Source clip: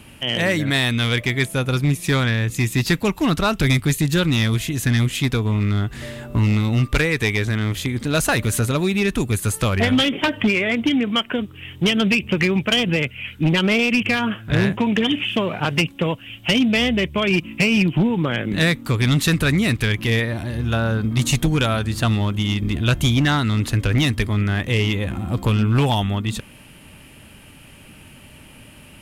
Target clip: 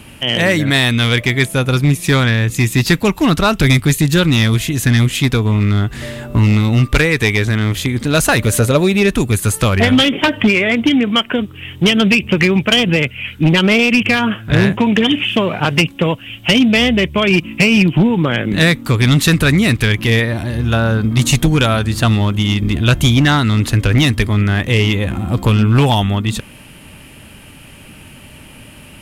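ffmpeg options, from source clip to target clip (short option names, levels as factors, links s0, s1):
-filter_complex "[0:a]asettb=1/sr,asplit=3[s0][s1][s2];[s0]atrim=end=8.464[s3];[s1]atrim=start=8.46:end=9.13,asetpts=PTS-STARTPTS,afade=t=in:d=0.004:c=qsin,afade=t=out:st=0.666:d=0.004:c=qsin,equalizer=f=540:w=2.6:g=8[s4];[s2]atrim=start=9.126[s5];[s3][s4]acrossfade=d=0.004:c1=hsin:c2=qsin[s6];[s6][s5]acrossfade=d=0.004:c1=qsin:c2=hsin,volume=2"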